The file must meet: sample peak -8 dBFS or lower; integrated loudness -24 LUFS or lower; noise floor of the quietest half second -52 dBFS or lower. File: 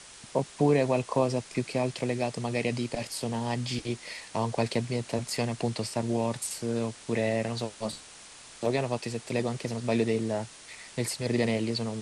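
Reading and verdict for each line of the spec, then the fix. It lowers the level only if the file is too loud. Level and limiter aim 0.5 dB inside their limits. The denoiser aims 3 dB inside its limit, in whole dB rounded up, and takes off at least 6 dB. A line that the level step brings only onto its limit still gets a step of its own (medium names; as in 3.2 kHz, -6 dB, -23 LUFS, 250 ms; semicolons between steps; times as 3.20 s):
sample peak -13.0 dBFS: pass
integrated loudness -30.0 LUFS: pass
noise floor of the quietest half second -49 dBFS: fail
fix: noise reduction 6 dB, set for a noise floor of -49 dBFS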